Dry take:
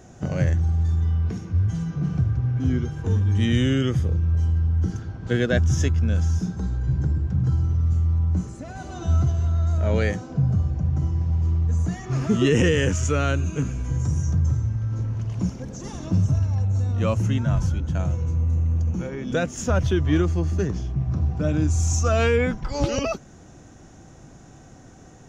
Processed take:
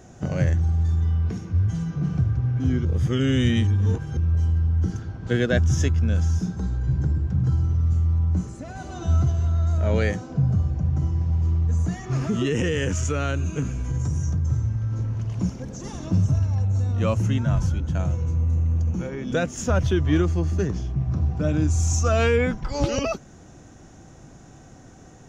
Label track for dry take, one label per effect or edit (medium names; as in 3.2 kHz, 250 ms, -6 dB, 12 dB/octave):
2.850000	4.170000	reverse
12.170000	14.520000	compression 3:1, threshold -20 dBFS